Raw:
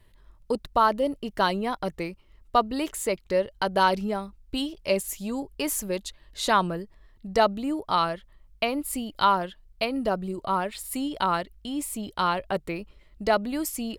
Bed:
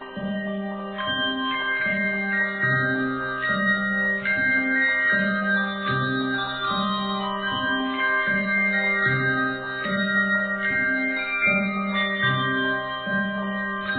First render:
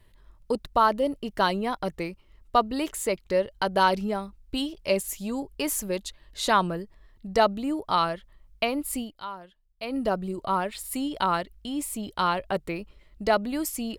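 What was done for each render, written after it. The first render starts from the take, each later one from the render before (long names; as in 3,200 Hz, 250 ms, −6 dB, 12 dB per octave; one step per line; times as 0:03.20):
0:09.01–0:09.94: duck −16 dB, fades 0.14 s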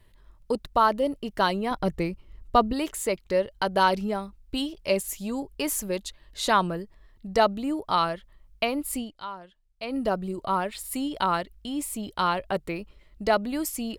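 0:01.71–0:02.73: low-shelf EQ 320 Hz +9 dB
0:08.98–0:09.89: low-pass filter 10,000 Hz 24 dB per octave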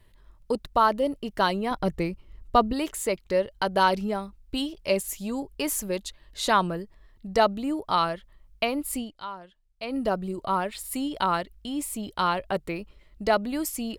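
no processing that can be heard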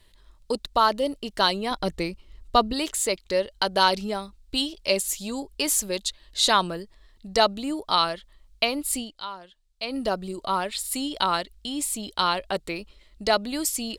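octave-band graphic EQ 125/4,000/8,000 Hz −7/+9/+7 dB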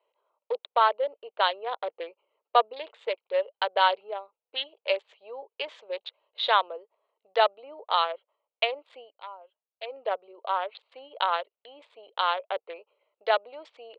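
adaptive Wiener filter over 25 samples
Chebyshev band-pass filter 470–3,500 Hz, order 4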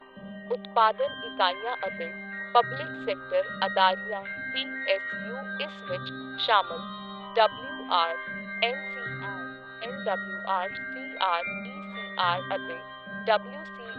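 mix in bed −13.5 dB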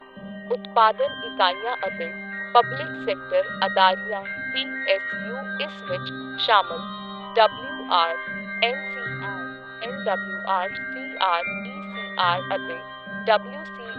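level +4.5 dB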